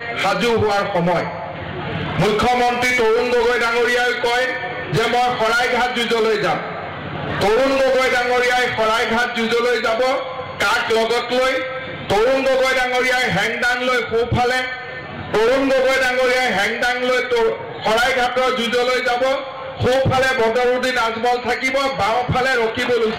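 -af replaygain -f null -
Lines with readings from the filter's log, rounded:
track_gain = -0.3 dB
track_peak = 0.154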